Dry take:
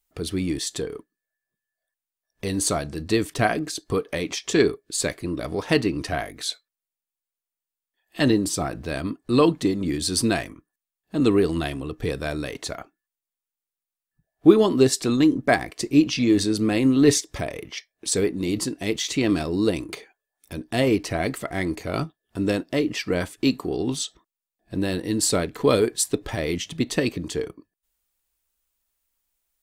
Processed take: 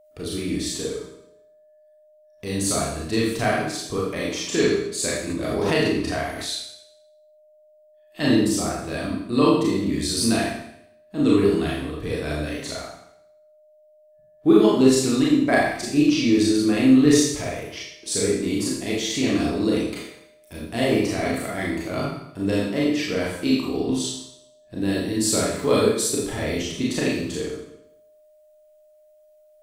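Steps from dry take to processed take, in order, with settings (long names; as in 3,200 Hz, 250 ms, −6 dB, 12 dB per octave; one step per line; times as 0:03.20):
four-comb reverb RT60 0.75 s, combs from 27 ms, DRR −5.5 dB
steady tone 610 Hz −47 dBFS
0:05.29–0:06.49: background raised ahead of every attack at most 23 dB per second
level −5.5 dB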